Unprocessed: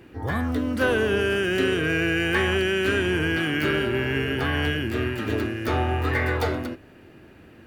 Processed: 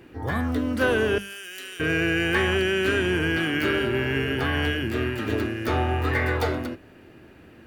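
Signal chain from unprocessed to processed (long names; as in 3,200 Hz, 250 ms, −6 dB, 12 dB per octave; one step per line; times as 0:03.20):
0:01.18–0:01.80: first difference
mains-hum notches 50/100/150/200 Hz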